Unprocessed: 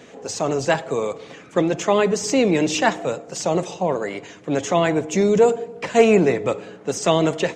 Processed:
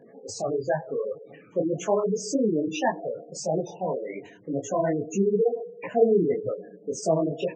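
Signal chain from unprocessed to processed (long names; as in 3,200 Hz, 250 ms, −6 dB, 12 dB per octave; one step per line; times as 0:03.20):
gate on every frequency bin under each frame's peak −10 dB strong
micro pitch shift up and down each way 59 cents
level −1.5 dB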